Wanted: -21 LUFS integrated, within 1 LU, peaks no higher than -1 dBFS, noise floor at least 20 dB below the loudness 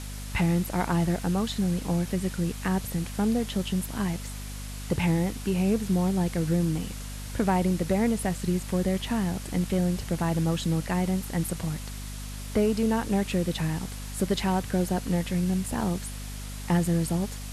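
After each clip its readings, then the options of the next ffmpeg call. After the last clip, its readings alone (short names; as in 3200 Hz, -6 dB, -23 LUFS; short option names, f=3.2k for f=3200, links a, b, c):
hum 50 Hz; harmonics up to 250 Hz; hum level -35 dBFS; noise floor -37 dBFS; noise floor target -48 dBFS; loudness -27.5 LUFS; peak -12.5 dBFS; loudness target -21.0 LUFS
-> -af "bandreject=f=50:t=h:w=4,bandreject=f=100:t=h:w=4,bandreject=f=150:t=h:w=4,bandreject=f=200:t=h:w=4,bandreject=f=250:t=h:w=4"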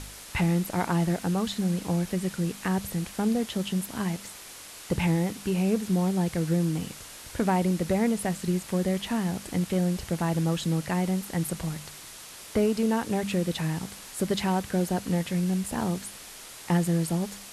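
hum none; noise floor -45 dBFS; noise floor target -48 dBFS
-> -af "afftdn=nr=6:nf=-45"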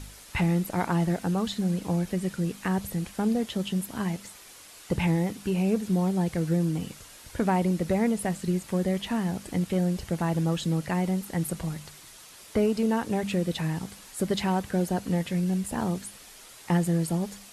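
noise floor -49 dBFS; loudness -28.0 LUFS; peak -13.0 dBFS; loudness target -21.0 LUFS
-> -af "volume=7dB"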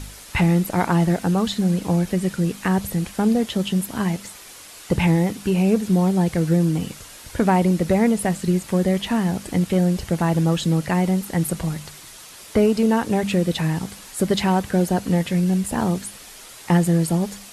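loudness -21.0 LUFS; peak -6.0 dBFS; noise floor -42 dBFS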